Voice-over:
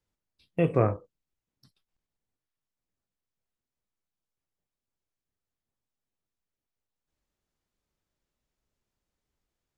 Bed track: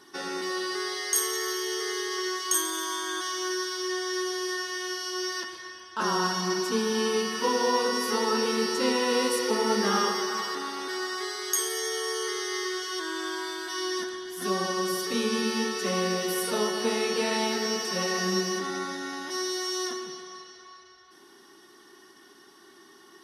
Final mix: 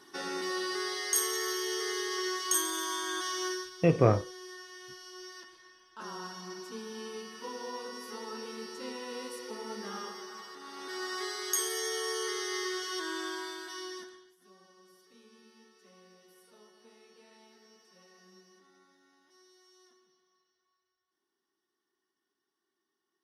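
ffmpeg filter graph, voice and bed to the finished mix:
ffmpeg -i stem1.wav -i stem2.wav -filter_complex "[0:a]adelay=3250,volume=0.5dB[link_01];[1:a]volume=9dB,afade=type=out:start_time=3.46:duration=0.24:silence=0.237137,afade=type=in:start_time=10.59:duration=0.6:silence=0.251189,afade=type=out:start_time=13.13:duration=1.24:silence=0.0375837[link_02];[link_01][link_02]amix=inputs=2:normalize=0" out.wav

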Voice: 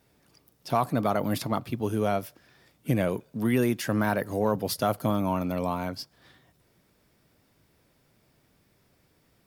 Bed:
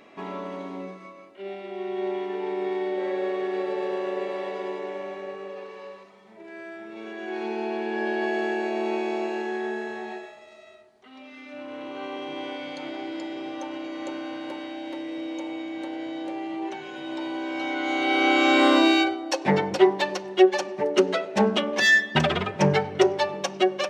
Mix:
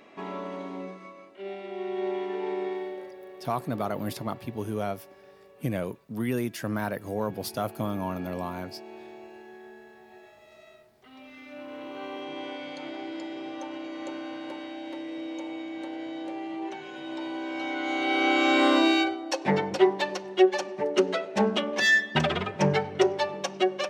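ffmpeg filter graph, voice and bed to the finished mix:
ffmpeg -i stem1.wav -i stem2.wav -filter_complex "[0:a]adelay=2750,volume=-4.5dB[link_01];[1:a]volume=13dB,afade=type=out:start_time=2.53:duration=0.59:silence=0.158489,afade=type=in:start_time=10.1:duration=0.52:silence=0.188365[link_02];[link_01][link_02]amix=inputs=2:normalize=0" out.wav

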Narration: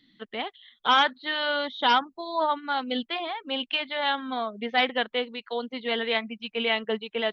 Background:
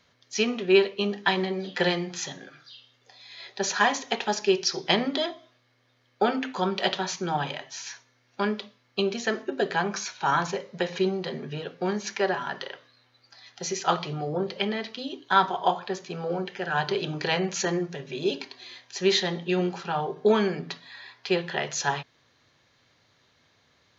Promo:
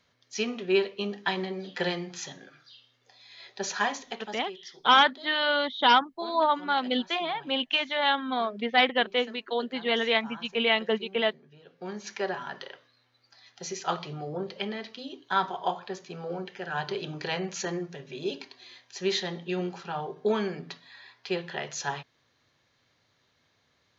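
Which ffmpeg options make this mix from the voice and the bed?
ffmpeg -i stem1.wav -i stem2.wav -filter_complex "[0:a]adelay=4000,volume=1.5dB[link_01];[1:a]volume=10.5dB,afade=type=out:start_time=3.8:duration=0.67:silence=0.158489,afade=type=in:start_time=11.6:duration=0.56:silence=0.16788[link_02];[link_01][link_02]amix=inputs=2:normalize=0" out.wav

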